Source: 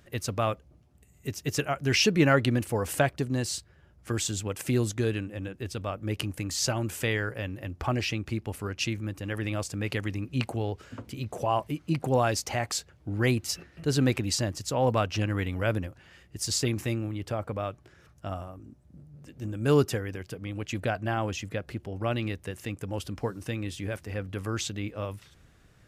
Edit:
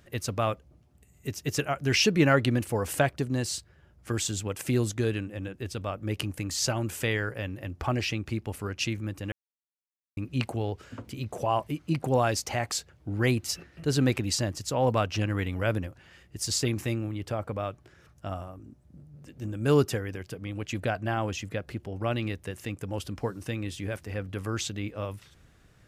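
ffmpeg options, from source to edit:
ffmpeg -i in.wav -filter_complex "[0:a]asplit=3[link_01][link_02][link_03];[link_01]atrim=end=9.32,asetpts=PTS-STARTPTS,afade=type=out:start_time=9.316:duration=0.004:curve=hsin[link_04];[link_02]atrim=start=9.32:end=10.17,asetpts=PTS-STARTPTS,volume=0[link_05];[link_03]atrim=start=10.17,asetpts=PTS-STARTPTS,afade=type=in:duration=0.004:curve=hsin[link_06];[link_04][link_05][link_06]concat=n=3:v=0:a=1" out.wav

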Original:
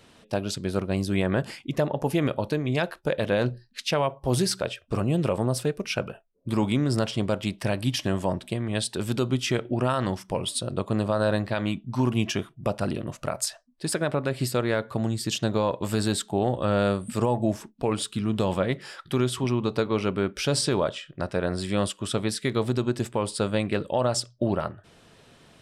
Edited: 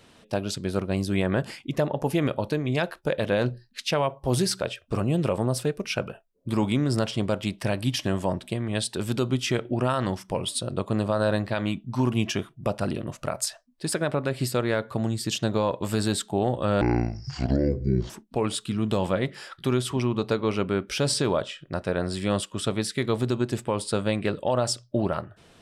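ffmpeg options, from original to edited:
ffmpeg -i in.wav -filter_complex "[0:a]asplit=3[link_01][link_02][link_03];[link_01]atrim=end=16.814[link_04];[link_02]atrim=start=16.81:end=17.57,asetpts=PTS-STARTPTS,asetrate=26019,aresample=44100[link_05];[link_03]atrim=start=17.566[link_06];[link_04][link_05]acrossfade=duration=0.004:curve1=hsin:curve2=hsin[link_07];[link_07][link_06]acrossfade=duration=0.004:curve1=hsin:curve2=hsin" out.wav

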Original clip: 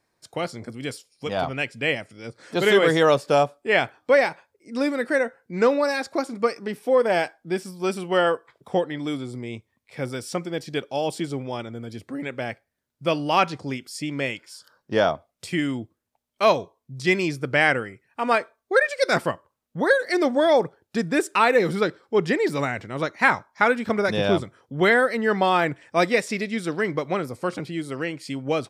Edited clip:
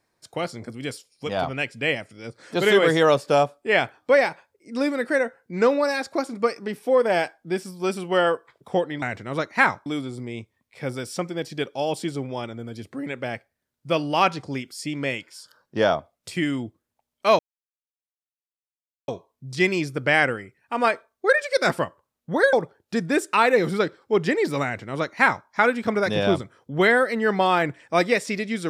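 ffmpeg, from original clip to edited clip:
ffmpeg -i in.wav -filter_complex "[0:a]asplit=5[link_01][link_02][link_03][link_04][link_05];[link_01]atrim=end=9.022[link_06];[link_02]atrim=start=22.658:end=23.502[link_07];[link_03]atrim=start=9.018:end=16.55,asetpts=PTS-STARTPTS,afade=type=out:start_time=7.528:duration=0.004:curve=hsin,apad=pad_dur=1.69[link_08];[link_04]atrim=start=16.55:end=20.002,asetpts=PTS-STARTPTS,afade=type=in:duration=0.004:curve=hsin[link_09];[link_05]atrim=start=20.548[link_10];[link_06][link_07]acrossfade=duration=0.004:curve1=hsin:curve2=hsin[link_11];[link_08][link_09]concat=n=2:v=0:a=1[link_12];[link_11][link_12]acrossfade=duration=0.004:curve1=hsin:curve2=hsin[link_13];[link_13][link_10]acrossfade=duration=0.004:curve1=hsin:curve2=hsin" out.wav

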